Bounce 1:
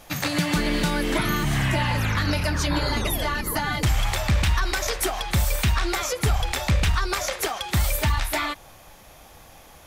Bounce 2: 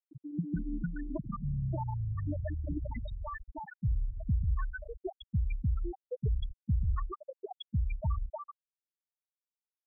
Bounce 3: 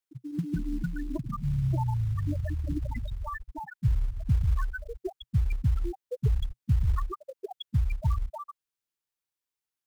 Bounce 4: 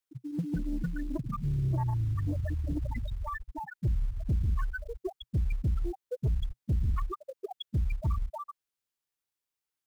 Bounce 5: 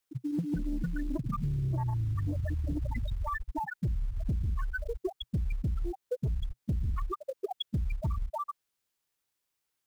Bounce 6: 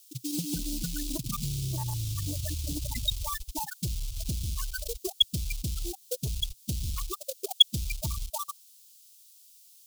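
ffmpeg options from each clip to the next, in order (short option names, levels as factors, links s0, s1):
-filter_complex "[0:a]asplit=2[s0][s1];[s1]adelay=478.1,volume=0.0447,highshelf=f=4000:g=-10.8[s2];[s0][s2]amix=inputs=2:normalize=0,afftfilt=real='re*gte(hypot(re,im),0.355)':imag='im*gte(hypot(re,im),0.355)':win_size=1024:overlap=0.75,volume=0.398"
-filter_complex "[0:a]asplit=2[s0][s1];[s1]acrusher=bits=5:mode=log:mix=0:aa=0.000001,volume=0.708[s2];[s0][s2]amix=inputs=2:normalize=0,equalizer=f=125:t=o:w=0.33:g=4,equalizer=f=200:t=o:w=0.33:g=-6,equalizer=f=630:t=o:w=0.33:g=-7"
-af "asoftclip=type=tanh:threshold=0.075"
-af "acompressor=threshold=0.0178:ratio=6,volume=2"
-af "aexciter=amount=8.4:drive=9.9:freq=2800,volume=0.794"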